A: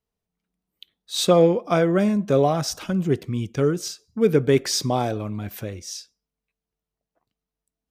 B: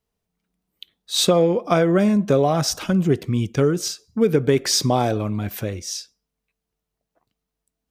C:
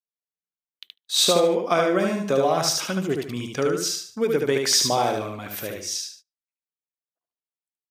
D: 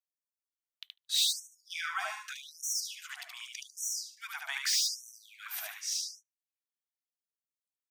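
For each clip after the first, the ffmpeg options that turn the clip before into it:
ffmpeg -i in.wav -af "acompressor=threshold=-18dB:ratio=6,volume=5dB" out.wav
ffmpeg -i in.wav -filter_complex "[0:a]highpass=frequency=610:poles=1,asplit=2[link_01][link_02];[link_02]aecho=0:1:74|148|222|296:0.668|0.214|0.0684|0.0219[link_03];[link_01][link_03]amix=inputs=2:normalize=0,agate=range=-26dB:threshold=-45dB:ratio=16:detection=peak" out.wav
ffmpeg -i in.wav -filter_complex "[0:a]acrossover=split=120|3300[link_01][link_02][link_03];[link_03]asoftclip=type=hard:threshold=-23.5dB[link_04];[link_01][link_02][link_04]amix=inputs=3:normalize=0,afftfilt=real='re*gte(b*sr/1024,640*pow(5700/640,0.5+0.5*sin(2*PI*0.84*pts/sr)))':imag='im*gte(b*sr/1024,640*pow(5700/640,0.5+0.5*sin(2*PI*0.84*pts/sr)))':win_size=1024:overlap=0.75,volume=-4.5dB" out.wav

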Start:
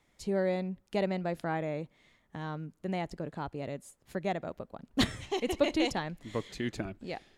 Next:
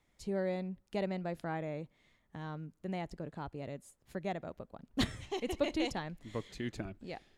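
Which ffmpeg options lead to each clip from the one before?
ffmpeg -i in.wav -af "lowshelf=frequency=120:gain=5,volume=-5.5dB" out.wav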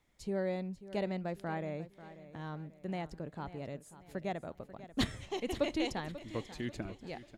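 ffmpeg -i in.wav -af "aecho=1:1:540|1080|1620|2160:0.178|0.0729|0.0299|0.0123" out.wav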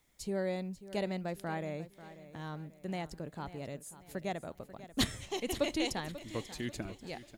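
ffmpeg -i in.wav -af "crystalizer=i=2:c=0" out.wav

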